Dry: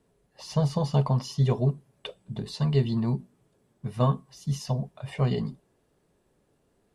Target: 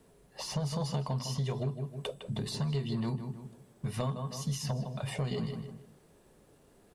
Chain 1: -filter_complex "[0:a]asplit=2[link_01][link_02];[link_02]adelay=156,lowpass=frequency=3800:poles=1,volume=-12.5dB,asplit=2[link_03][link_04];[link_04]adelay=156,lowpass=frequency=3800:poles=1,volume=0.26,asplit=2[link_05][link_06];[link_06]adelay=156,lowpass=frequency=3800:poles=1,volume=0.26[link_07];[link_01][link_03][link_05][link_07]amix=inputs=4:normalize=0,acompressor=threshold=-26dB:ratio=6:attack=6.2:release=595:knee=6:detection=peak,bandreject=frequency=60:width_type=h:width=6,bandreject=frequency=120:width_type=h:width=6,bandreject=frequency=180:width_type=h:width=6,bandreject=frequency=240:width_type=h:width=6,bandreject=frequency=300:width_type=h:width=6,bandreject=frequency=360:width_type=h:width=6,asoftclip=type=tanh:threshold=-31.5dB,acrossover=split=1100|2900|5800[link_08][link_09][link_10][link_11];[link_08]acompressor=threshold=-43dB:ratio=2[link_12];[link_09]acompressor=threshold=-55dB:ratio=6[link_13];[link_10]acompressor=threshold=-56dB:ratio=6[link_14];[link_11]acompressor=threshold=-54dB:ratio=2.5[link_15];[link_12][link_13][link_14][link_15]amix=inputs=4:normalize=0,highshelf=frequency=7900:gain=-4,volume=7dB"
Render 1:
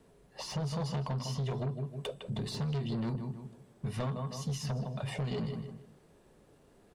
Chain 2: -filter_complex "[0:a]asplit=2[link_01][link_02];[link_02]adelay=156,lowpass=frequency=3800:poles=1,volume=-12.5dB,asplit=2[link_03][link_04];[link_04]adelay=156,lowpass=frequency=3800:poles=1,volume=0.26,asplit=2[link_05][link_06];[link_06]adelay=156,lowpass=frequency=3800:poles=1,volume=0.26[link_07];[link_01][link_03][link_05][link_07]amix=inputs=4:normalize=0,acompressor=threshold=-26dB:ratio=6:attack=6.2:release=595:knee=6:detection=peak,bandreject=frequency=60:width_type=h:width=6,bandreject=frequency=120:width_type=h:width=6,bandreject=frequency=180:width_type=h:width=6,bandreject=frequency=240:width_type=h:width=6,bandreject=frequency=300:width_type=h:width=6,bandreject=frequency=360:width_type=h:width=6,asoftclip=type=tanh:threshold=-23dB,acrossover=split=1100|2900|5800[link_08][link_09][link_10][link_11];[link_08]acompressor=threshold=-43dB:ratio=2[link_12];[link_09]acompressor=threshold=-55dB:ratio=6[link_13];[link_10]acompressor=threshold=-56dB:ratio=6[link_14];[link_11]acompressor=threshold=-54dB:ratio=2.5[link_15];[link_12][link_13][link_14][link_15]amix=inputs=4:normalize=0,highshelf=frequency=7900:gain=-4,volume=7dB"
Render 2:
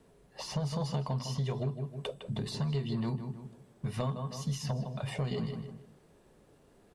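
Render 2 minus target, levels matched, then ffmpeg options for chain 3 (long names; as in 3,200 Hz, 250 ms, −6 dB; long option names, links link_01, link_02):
8,000 Hz band −3.5 dB
-filter_complex "[0:a]asplit=2[link_01][link_02];[link_02]adelay=156,lowpass=frequency=3800:poles=1,volume=-12.5dB,asplit=2[link_03][link_04];[link_04]adelay=156,lowpass=frequency=3800:poles=1,volume=0.26,asplit=2[link_05][link_06];[link_06]adelay=156,lowpass=frequency=3800:poles=1,volume=0.26[link_07];[link_01][link_03][link_05][link_07]amix=inputs=4:normalize=0,acompressor=threshold=-26dB:ratio=6:attack=6.2:release=595:knee=6:detection=peak,bandreject=frequency=60:width_type=h:width=6,bandreject=frequency=120:width_type=h:width=6,bandreject=frequency=180:width_type=h:width=6,bandreject=frequency=240:width_type=h:width=6,bandreject=frequency=300:width_type=h:width=6,bandreject=frequency=360:width_type=h:width=6,asoftclip=type=tanh:threshold=-23dB,acrossover=split=1100|2900|5800[link_08][link_09][link_10][link_11];[link_08]acompressor=threshold=-43dB:ratio=2[link_12];[link_09]acompressor=threshold=-55dB:ratio=6[link_13];[link_10]acompressor=threshold=-56dB:ratio=6[link_14];[link_11]acompressor=threshold=-54dB:ratio=2.5[link_15];[link_12][link_13][link_14][link_15]amix=inputs=4:normalize=0,highshelf=frequency=7900:gain=4.5,volume=7dB"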